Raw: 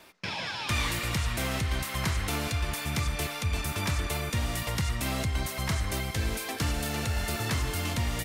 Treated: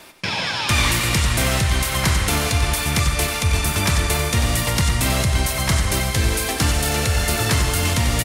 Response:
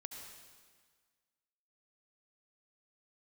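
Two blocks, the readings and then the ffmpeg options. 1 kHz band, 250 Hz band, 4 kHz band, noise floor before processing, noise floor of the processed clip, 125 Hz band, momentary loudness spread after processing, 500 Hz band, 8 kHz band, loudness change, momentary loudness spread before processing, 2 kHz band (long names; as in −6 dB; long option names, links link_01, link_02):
+10.5 dB, +9.5 dB, +11.5 dB, −37 dBFS, −25 dBFS, +10.5 dB, 2 LU, +11.0 dB, +14.0 dB, +11.0 dB, 2 LU, +10.5 dB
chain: -filter_complex "[0:a]asplit=2[link_01][link_02];[link_02]adelay=93.29,volume=-8dB,highshelf=frequency=4000:gain=-2.1[link_03];[link_01][link_03]amix=inputs=2:normalize=0,asplit=2[link_04][link_05];[1:a]atrim=start_sample=2205,asetrate=22491,aresample=44100,highshelf=frequency=4200:gain=12[link_06];[link_05][link_06]afir=irnorm=-1:irlink=0,volume=-9.5dB[link_07];[link_04][link_07]amix=inputs=2:normalize=0,volume=7.5dB"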